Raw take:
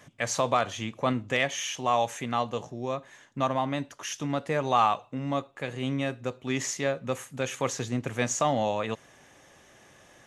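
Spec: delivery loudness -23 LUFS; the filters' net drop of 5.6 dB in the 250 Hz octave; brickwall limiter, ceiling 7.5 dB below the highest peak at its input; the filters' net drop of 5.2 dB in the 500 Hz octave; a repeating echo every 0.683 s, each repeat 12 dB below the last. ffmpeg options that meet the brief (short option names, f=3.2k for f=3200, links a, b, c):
-af "equalizer=f=250:t=o:g=-5,equalizer=f=500:t=o:g=-5.5,alimiter=limit=-20dB:level=0:latency=1,aecho=1:1:683|1366|2049:0.251|0.0628|0.0157,volume=10.5dB"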